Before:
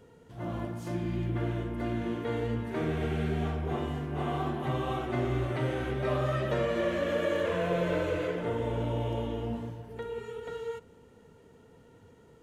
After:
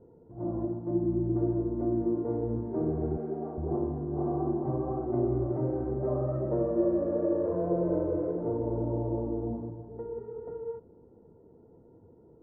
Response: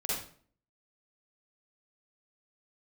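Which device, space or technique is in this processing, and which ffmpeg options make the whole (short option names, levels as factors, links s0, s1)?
under water: -filter_complex "[0:a]asettb=1/sr,asplit=3[s0][s1][s2];[s0]atrim=end=3.174[s3];[s1]atrim=start=3.17:end=3.58,asetpts=PTS-STARTPTS,afade=t=in:d=0.004:c=qsin,afade=t=out:st=0.406:d=0.004:c=qsin,highpass=280[s4];[s2]atrim=start=3.576[s5];[s3][s4]acrossfade=d=0.004:c1=hsin:c2=qsin[s6];[s6][s5]acrossfade=d=0.004:c1=qsin:c2=hsin,lowpass=f=860:w=0.5412,lowpass=f=860:w=1.3066,equalizer=f=340:t=o:w=0.24:g=11,volume=0.891"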